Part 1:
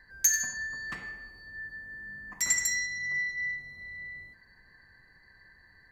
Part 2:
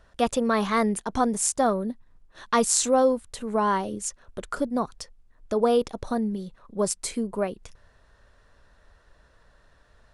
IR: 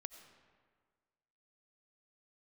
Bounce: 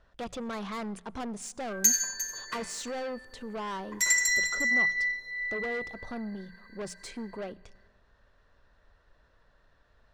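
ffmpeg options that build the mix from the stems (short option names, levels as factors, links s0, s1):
-filter_complex "[0:a]highpass=310,aecho=1:1:2:0.86,adelay=1600,volume=1.06,asplit=2[s0][s1];[s1]volume=0.224[s2];[1:a]lowpass=5200,bandreject=f=60:t=h:w=6,bandreject=f=120:t=h:w=6,bandreject=f=180:t=h:w=6,asoftclip=type=tanh:threshold=0.0447,volume=0.422,asplit=2[s3][s4];[s4]volume=0.376[s5];[2:a]atrim=start_sample=2205[s6];[s5][s6]afir=irnorm=-1:irlink=0[s7];[s2]aecho=0:1:352:1[s8];[s0][s3][s7][s8]amix=inputs=4:normalize=0"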